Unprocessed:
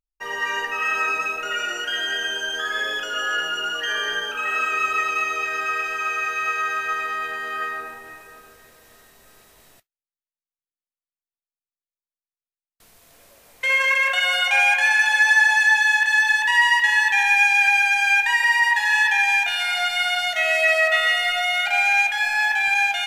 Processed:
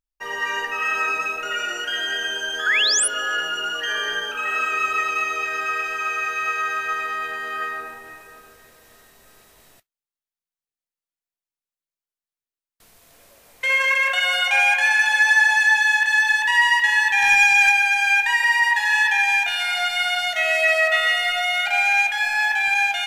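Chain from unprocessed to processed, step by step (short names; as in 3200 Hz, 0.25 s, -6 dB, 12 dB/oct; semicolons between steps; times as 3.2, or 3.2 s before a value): 2.66–3.08 painted sound rise 1400–11000 Hz -19 dBFS; 17.22–17.72 sample leveller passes 1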